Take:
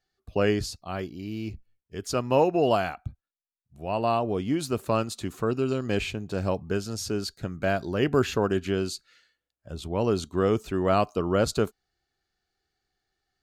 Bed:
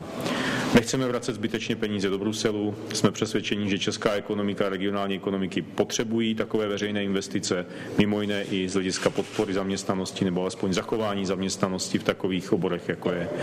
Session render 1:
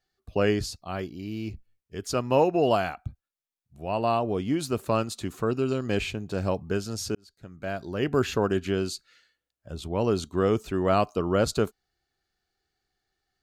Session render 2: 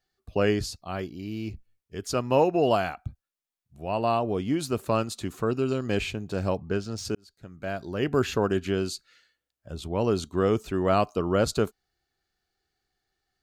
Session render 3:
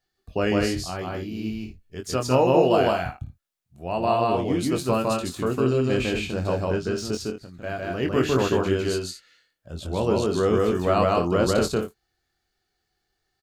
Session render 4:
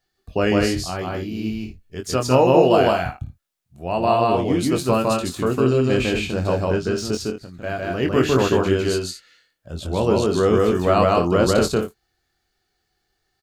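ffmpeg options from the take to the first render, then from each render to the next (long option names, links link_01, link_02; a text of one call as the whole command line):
ffmpeg -i in.wav -filter_complex "[0:a]asplit=2[link_01][link_02];[link_01]atrim=end=7.15,asetpts=PTS-STARTPTS,afade=type=out:start_time=7.146:duration=0.004:curve=hsin[link_03];[link_02]atrim=start=7.15,asetpts=PTS-STARTPTS,afade=type=in:duration=1.2[link_04];[link_03][link_04]concat=n=2:v=0:a=1" out.wav
ffmpeg -i in.wav -filter_complex "[0:a]asettb=1/sr,asplit=3[link_01][link_02][link_03];[link_01]atrim=end=6.574[link_04];[link_02]atrim=start=6.57:end=7.05,asetpts=PTS-STARTPTS,afade=type=in:duration=0.004:curve=qsin,afade=type=out:start_time=0.476:duration=0.004:curve=qsin,adynamicsmooth=sensitivity=4:basefreq=5000[link_05];[link_03]atrim=start=7.046[link_06];[link_04][link_05]acrossfade=duration=0.004:curve1=hsin:curve2=qsin[link_07];[link_07][link_06]acrossfade=duration=0.004:curve1=qsin:curve2=hsin" out.wav
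ffmpeg -i in.wav -filter_complex "[0:a]asplit=2[link_01][link_02];[link_02]adelay=23,volume=-6dB[link_03];[link_01][link_03]amix=inputs=2:normalize=0,asplit=2[link_04][link_05];[link_05]aecho=0:1:154.5|209.9:0.891|0.355[link_06];[link_04][link_06]amix=inputs=2:normalize=0" out.wav
ffmpeg -i in.wav -af "volume=4dB" out.wav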